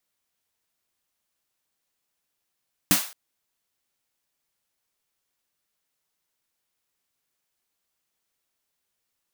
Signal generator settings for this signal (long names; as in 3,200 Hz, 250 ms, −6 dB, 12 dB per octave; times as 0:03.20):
synth snare length 0.22 s, tones 190 Hz, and 290 Hz, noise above 590 Hz, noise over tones 2 dB, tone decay 0.14 s, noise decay 0.41 s